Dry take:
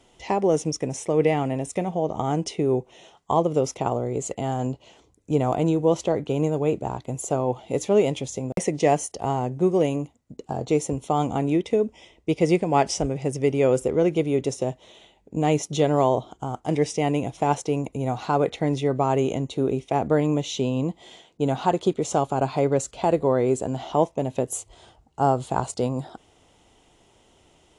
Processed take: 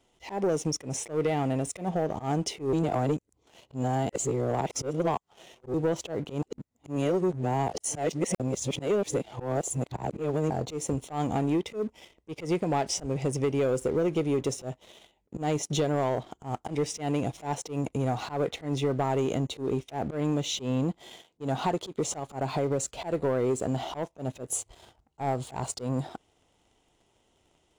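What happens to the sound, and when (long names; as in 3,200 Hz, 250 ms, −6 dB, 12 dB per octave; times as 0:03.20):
0:02.73–0:05.74: reverse
0:06.42–0:10.50: reverse
0:22.19–0:22.88: downward compressor 2 to 1, threshold −24 dBFS
whole clip: downward compressor 3 to 1, threshold −23 dBFS; leveller curve on the samples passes 2; volume swells 113 ms; level −6.5 dB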